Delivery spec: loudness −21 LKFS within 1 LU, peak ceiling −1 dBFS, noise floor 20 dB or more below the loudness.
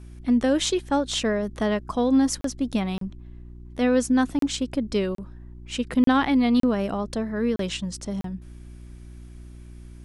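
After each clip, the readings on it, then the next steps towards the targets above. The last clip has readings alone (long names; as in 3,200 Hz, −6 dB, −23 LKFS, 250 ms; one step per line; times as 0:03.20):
number of dropouts 8; longest dropout 33 ms; mains hum 60 Hz; hum harmonics up to 360 Hz; level of the hum −40 dBFS; integrated loudness −24.0 LKFS; sample peak −9.5 dBFS; target loudness −21.0 LKFS
→ repair the gap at 0:02.41/0:02.98/0:04.39/0:05.15/0:06.04/0:06.60/0:07.56/0:08.21, 33 ms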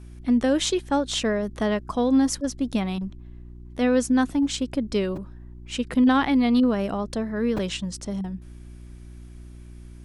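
number of dropouts 0; mains hum 60 Hz; hum harmonics up to 360 Hz; level of the hum −40 dBFS
→ hum removal 60 Hz, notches 6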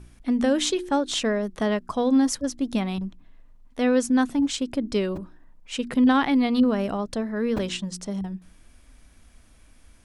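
mains hum none found; integrated loudness −24.5 LKFS; sample peak −9.5 dBFS; target loudness −21.0 LKFS
→ level +3.5 dB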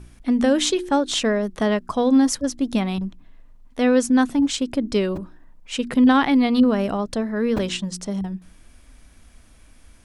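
integrated loudness −21.0 LKFS; sample peak −6.0 dBFS; background noise floor −50 dBFS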